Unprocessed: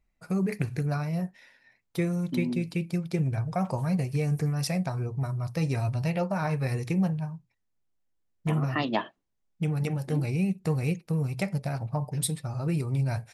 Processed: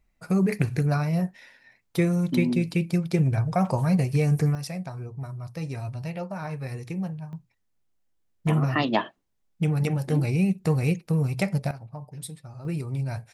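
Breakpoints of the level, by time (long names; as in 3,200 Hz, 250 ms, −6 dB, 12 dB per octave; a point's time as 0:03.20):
+5 dB
from 0:04.55 −5 dB
from 0:07.33 +4 dB
from 0:11.71 −9 dB
from 0:12.65 −2 dB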